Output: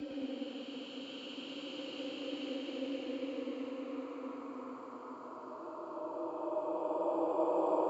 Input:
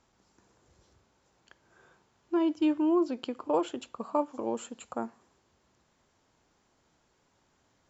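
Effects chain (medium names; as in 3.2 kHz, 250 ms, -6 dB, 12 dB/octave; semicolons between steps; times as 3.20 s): Paulstretch 21×, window 0.25 s, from 3.16 s; ever faster or slower copies 107 ms, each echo -1 st, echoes 2; frequency shift +34 Hz; trim -7 dB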